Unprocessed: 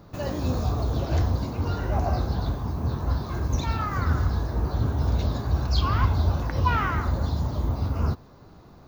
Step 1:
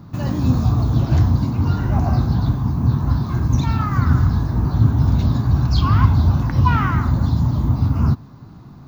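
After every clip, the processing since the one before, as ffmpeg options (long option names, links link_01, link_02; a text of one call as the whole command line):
ffmpeg -i in.wav -af "equalizer=frequency=125:width_type=o:width=1:gain=11,equalizer=frequency=250:width_type=o:width=1:gain=8,equalizer=frequency=500:width_type=o:width=1:gain=-8,equalizer=frequency=1000:width_type=o:width=1:gain=4,volume=2dB" out.wav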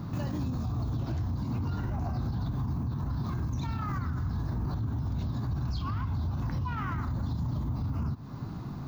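ffmpeg -i in.wav -af "acompressor=threshold=-24dB:ratio=6,alimiter=level_in=3.5dB:limit=-24dB:level=0:latency=1:release=58,volume=-3.5dB,volume=2.5dB" out.wav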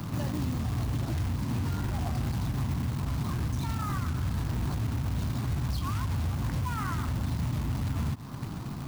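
ffmpeg -i in.wav -filter_complex "[0:a]acrossover=split=240|700[link_01][link_02][link_03];[link_03]acompressor=mode=upward:threshold=-48dB:ratio=2.5[link_04];[link_01][link_02][link_04]amix=inputs=3:normalize=0,acrusher=bits=3:mode=log:mix=0:aa=0.000001,volume=1dB" out.wav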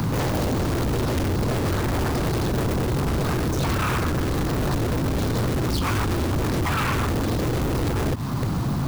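ffmpeg -i in.wav -af "aeval=exprs='0.106*sin(PI/2*3.55*val(0)/0.106)':channel_layout=same" out.wav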